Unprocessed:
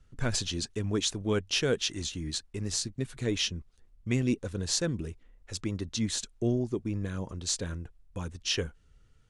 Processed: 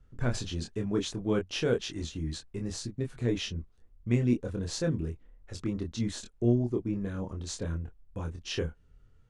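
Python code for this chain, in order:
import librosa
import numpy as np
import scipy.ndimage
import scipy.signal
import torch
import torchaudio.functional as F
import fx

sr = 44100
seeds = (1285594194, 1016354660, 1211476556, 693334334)

y = fx.high_shelf(x, sr, hz=2100.0, db=-11.5)
y = fx.doubler(y, sr, ms=25.0, db=-4)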